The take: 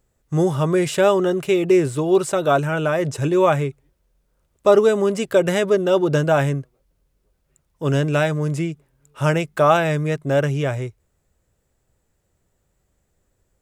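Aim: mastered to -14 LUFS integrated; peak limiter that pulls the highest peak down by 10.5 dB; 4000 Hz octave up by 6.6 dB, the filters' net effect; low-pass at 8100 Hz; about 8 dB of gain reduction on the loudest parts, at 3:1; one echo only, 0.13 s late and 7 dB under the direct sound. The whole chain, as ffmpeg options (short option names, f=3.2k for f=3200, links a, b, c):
-af "lowpass=8.1k,equalizer=f=4k:t=o:g=9,acompressor=threshold=-21dB:ratio=3,alimiter=limit=-20dB:level=0:latency=1,aecho=1:1:130:0.447,volume=13.5dB"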